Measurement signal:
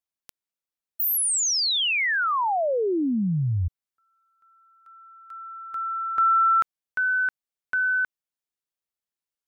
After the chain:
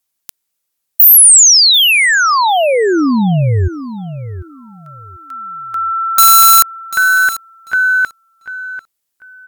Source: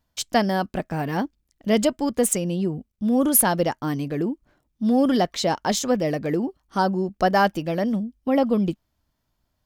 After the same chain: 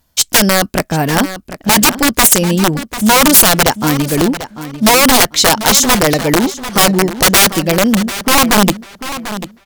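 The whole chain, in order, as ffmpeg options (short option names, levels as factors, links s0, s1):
-filter_complex "[0:a]aeval=exprs='(mod(6.31*val(0)+1,2)-1)/6.31':c=same,aemphasis=mode=production:type=cd,asplit=2[s0][s1];[s1]adelay=743,lowpass=f=4300:p=1,volume=0.237,asplit=2[s2][s3];[s3]adelay=743,lowpass=f=4300:p=1,volume=0.23,asplit=2[s4][s5];[s5]adelay=743,lowpass=f=4300:p=1,volume=0.23[s6];[s0][s2][s4][s6]amix=inputs=4:normalize=0,apsyclip=4.73,volume=0.841"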